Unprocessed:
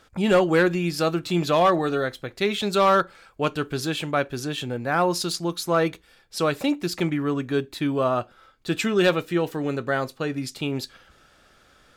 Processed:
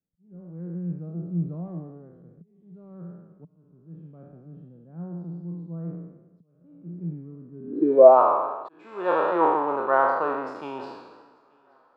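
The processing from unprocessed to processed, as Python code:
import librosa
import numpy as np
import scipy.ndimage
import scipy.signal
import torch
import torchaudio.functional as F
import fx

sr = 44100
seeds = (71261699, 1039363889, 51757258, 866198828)

p1 = fx.spec_trails(x, sr, decay_s=1.61)
p2 = p1 + fx.echo_feedback(p1, sr, ms=882, feedback_pct=36, wet_db=-22, dry=0)
p3 = fx.vibrato(p2, sr, rate_hz=2.6, depth_cents=38.0)
p4 = fx.auto_swell(p3, sr, attack_ms=770.0)
p5 = fx.bass_treble(p4, sr, bass_db=-13, treble_db=8)
p6 = fx.filter_sweep_lowpass(p5, sr, from_hz=170.0, to_hz=970.0, start_s=7.59, end_s=8.19, q=7.1)
p7 = fx.low_shelf(p6, sr, hz=160.0, db=-7.5)
p8 = fx.band_widen(p7, sr, depth_pct=40)
y = F.gain(torch.from_numpy(p8), -4.0).numpy()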